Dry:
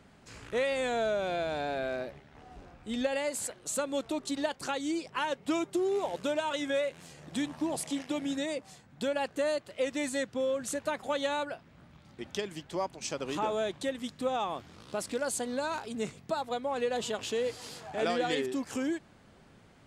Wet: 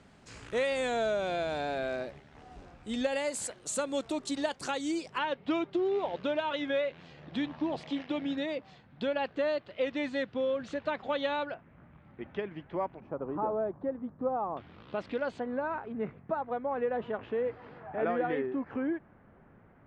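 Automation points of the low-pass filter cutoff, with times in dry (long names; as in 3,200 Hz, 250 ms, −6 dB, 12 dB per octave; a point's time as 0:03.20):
low-pass filter 24 dB per octave
9,900 Hz
from 0:05.18 3,900 Hz
from 0:11.54 2,300 Hz
from 0:13.00 1,200 Hz
from 0:14.57 3,200 Hz
from 0:15.40 1,900 Hz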